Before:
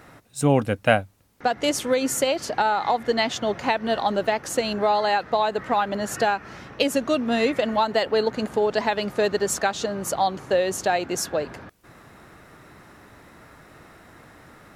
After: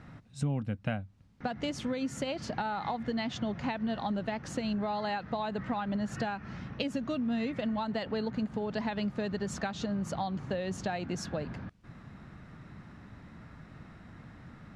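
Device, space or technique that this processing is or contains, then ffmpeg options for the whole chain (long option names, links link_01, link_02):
jukebox: -af "lowpass=5000,lowshelf=frequency=280:width_type=q:width=1.5:gain=9.5,acompressor=threshold=-23dB:ratio=5,volume=-7dB"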